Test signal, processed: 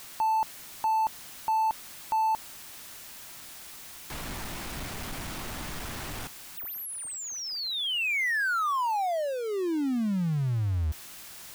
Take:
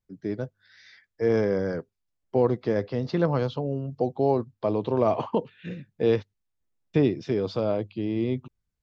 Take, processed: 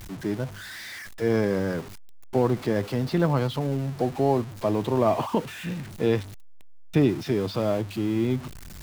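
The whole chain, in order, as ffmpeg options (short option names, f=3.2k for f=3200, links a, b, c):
-filter_complex "[0:a]aeval=exprs='val(0)+0.5*0.0158*sgn(val(0))':c=same,equalizer=f=480:w=2.8:g=-5.5,acrossover=split=3100[a][b];[b]acompressor=threshold=-40dB:ratio=4:attack=1:release=60[c];[a][c]amix=inputs=2:normalize=0,volume=2dB"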